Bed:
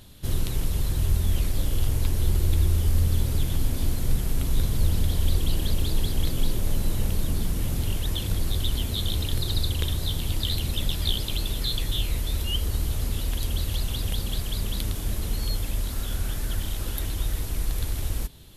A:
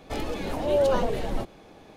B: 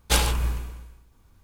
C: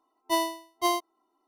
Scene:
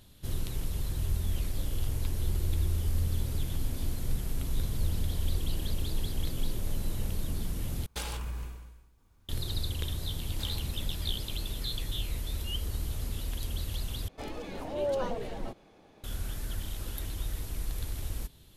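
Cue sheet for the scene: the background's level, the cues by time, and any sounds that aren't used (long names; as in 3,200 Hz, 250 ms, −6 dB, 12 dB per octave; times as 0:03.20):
bed −7.5 dB
0:07.86: overwrite with B −7 dB + downward compressor 5 to 1, threshold −25 dBFS
0:10.29: mix in B −7 dB + downward compressor 2.5 to 1, threshold −45 dBFS
0:14.08: overwrite with A −8.5 dB
not used: C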